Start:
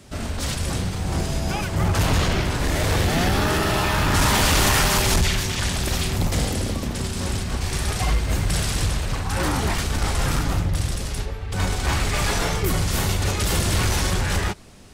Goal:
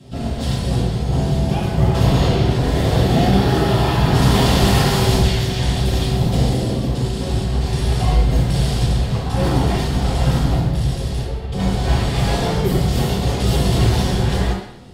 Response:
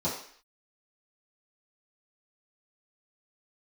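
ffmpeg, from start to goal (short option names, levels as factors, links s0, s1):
-filter_complex "[0:a]acontrast=29[s0];[1:a]atrim=start_sample=2205,asetrate=33516,aresample=44100[s1];[s0][s1]afir=irnorm=-1:irlink=0,volume=0.211"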